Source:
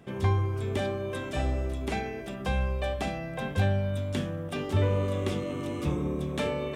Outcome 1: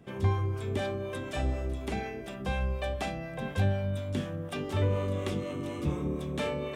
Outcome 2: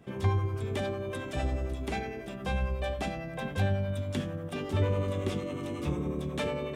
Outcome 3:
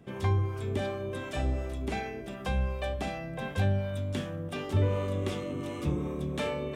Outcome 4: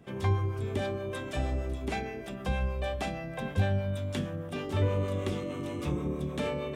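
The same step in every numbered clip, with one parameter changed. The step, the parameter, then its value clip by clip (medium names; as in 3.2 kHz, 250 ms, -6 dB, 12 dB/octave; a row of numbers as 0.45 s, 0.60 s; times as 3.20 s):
harmonic tremolo, rate: 4.1 Hz, 11 Hz, 2.7 Hz, 6.4 Hz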